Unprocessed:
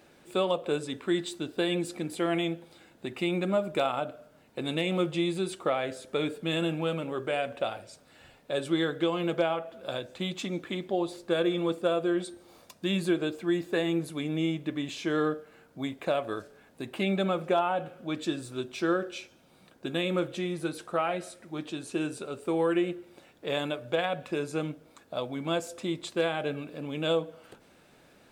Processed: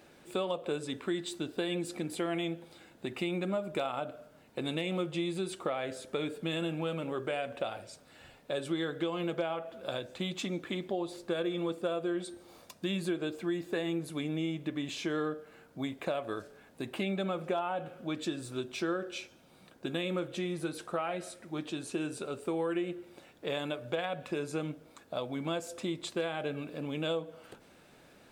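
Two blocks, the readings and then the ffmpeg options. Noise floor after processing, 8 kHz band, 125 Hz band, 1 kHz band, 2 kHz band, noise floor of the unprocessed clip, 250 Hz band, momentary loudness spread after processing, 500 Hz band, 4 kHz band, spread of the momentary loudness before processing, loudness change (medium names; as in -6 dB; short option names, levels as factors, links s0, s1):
-59 dBFS, -2.0 dB, -4.0 dB, -5.5 dB, -4.5 dB, -59 dBFS, -4.5 dB, 9 LU, -5.0 dB, -4.5 dB, 10 LU, -5.0 dB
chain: -af "acompressor=threshold=0.0251:ratio=2.5"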